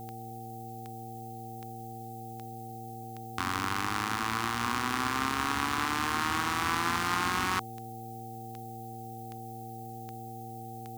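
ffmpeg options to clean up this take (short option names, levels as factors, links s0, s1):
-af "adeclick=t=4,bandreject=f=114.7:t=h:w=4,bandreject=f=229.4:t=h:w=4,bandreject=f=344.1:t=h:w=4,bandreject=f=458.8:t=h:w=4,bandreject=f=770:w=30,afftdn=nr=30:nf=-42"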